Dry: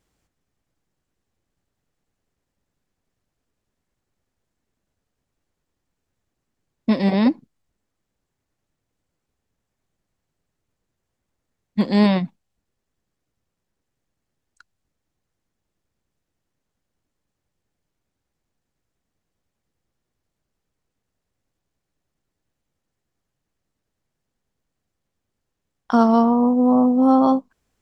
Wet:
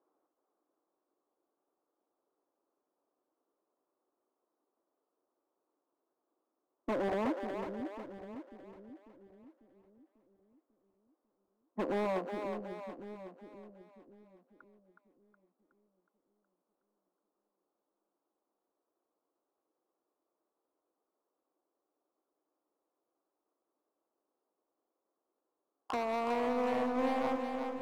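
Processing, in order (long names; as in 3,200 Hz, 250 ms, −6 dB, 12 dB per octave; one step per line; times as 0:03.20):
Chebyshev band-pass filter 310–1,200 Hz, order 3
downward compressor 20 to 1, threshold −25 dBFS, peak gain reduction 12.5 dB
hard clipping −30.5 dBFS, distortion −8 dB
on a send: echo with a time of its own for lows and highs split 420 Hz, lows 545 ms, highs 368 ms, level −5.5 dB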